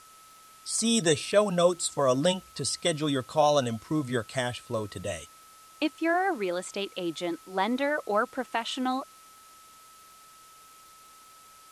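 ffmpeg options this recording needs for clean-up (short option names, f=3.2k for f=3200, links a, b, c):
-af "adeclick=t=4,bandreject=f=1.3k:w=30,afwtdn=0.002"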